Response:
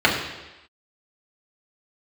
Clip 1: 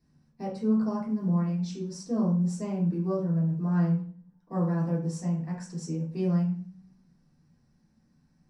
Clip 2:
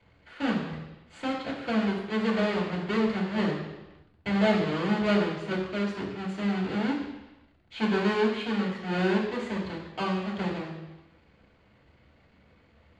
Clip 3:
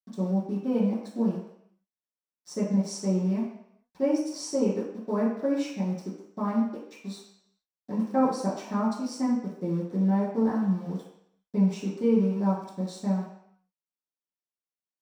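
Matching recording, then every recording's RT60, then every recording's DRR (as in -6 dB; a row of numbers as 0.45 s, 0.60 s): 2; 0.45 s, 1.0 s, 0.70 s; -7.0 dB, -4.5 dB, -10.0 dB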